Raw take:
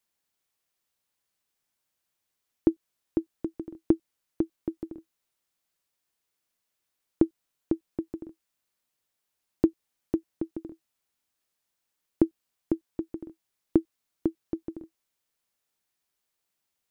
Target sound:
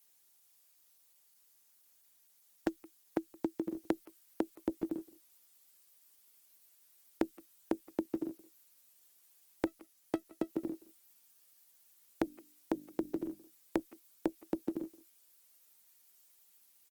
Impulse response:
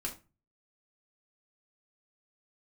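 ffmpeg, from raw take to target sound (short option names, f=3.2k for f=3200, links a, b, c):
-filter_complex "[0:a]asettb=1/sr,asplit=3[a][b][c];[a]atrim=end=9.674[d];[b]atrim=start=9.67:end=10.49,asetpts=PTS-STARTPTS,afade=t=in:d=0.004:c=qsin,afade=t=out:st=0.816:d=0.004:c=qsin,aeval=exprs='if(lt(val(0),0),0.447*val(0),val(0))':c=same[e];[c]atrim=start=10.486[f];[d][e]acrossfade=d=0.004:c1=hsin:c2=qsin[g];[g][f]acrossfade=d=0.004:c1=qsin:c2=hsin,highpass=f=150:w=0.5412,highpass=f=150:w=1.3066,asettb=1/sr,asplit=3[h][i][j];[h]atrim=end=12.224[k];[i]atrim=start=12.22:end=13.8,asetpts=PTS-STARTPTS,afade=t=in:d=0.004:c=qsin,afade=t=out:st=1.576:d=0.004:c=qsin,bandreject=f=50:t=h:w=6,bandreject=f=100:t=h:w=6,bandreject=f=150:t=h:w=6,bandreject=f=200:t=h:w=6,bandreject=f=250:t=h:w=6,bandreject=f=300:t=h:w=6[l];[j]atrim=start=13.796[m];[k][l]acrossfade=d=0.004:c1=hsin:c2=qsin[n];[n][m]acrossfade=d=0.004:c1=qsin:c2=hsin,acrossover=split=980[o][p];[o]acompressor=threshold=-35dB:ratio=16[q];[p]crystalizer=i=2:c=0[r];[q][r]amix=inputs=2:normalize=0,asoftclip=type=tanh:threshold=-21dB,asplit=2[s][t];[t]adelay=170,highpass=300,lowpass=3.4k,asoftclip=type=hard:threshold=-31.5dB,volume=-20dB[u];[s][u]amix=inputs=2:normalize=0,volume=5.5dB" -ar 48000 -c:a libopus -b:a 16k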